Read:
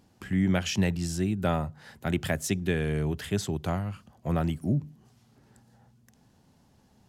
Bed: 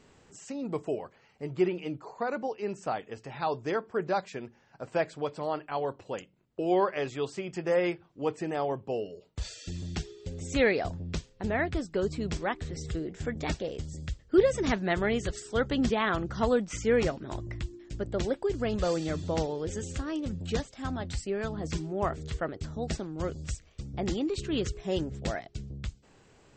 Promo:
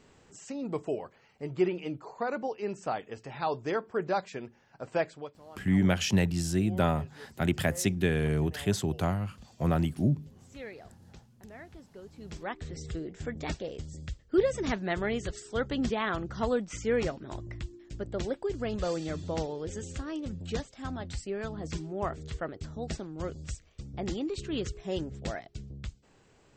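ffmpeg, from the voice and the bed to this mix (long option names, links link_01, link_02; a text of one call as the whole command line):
ffmpeg -i stem1.wav -i stem2.wav -filter_complex "[0:a]adelay=5350,volume=0.5dB[link_01];[1:a]volume=15.5dB,afade=type=out:start_time=5:duration=0.35:silence=0.11885,afade=type=in:start_time=12.13:duration=0.53:silence=0.158489[link_02];[link_01][link_02]amix=inputs=2:normalize=0" out.wav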